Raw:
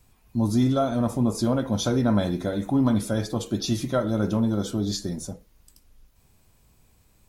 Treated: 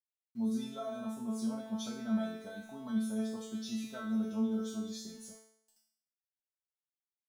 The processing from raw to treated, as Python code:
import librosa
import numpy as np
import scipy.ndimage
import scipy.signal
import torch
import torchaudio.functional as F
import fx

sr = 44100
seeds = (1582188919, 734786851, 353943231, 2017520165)

y = fx.highpass(x, sr, hz=170.0, slope=6)
y = np.where(np.abs(y) >= 10.0 ** (-46.0 / 20.0), y, 0.0)
y = fx.comb_fb(y, sr, f0_hz=220.0, decay_s=0.65, harmonics='all', damping=0.0, mix_pct=100)
y = F.gain(torch.from_numpy(y), 3.5).numpy()